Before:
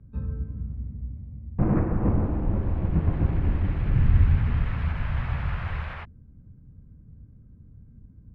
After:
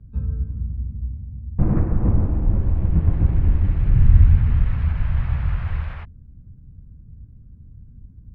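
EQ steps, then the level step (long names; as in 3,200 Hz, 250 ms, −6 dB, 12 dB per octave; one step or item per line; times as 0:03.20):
low-shelf EQ 140 Hz +11.5 dB
−2.5 dB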